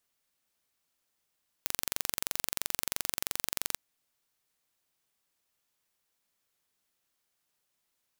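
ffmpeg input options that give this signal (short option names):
-f lavfi -i "aevalsrc='0.708*eq(mod(n,1917),0)':d=2.12:s=44100"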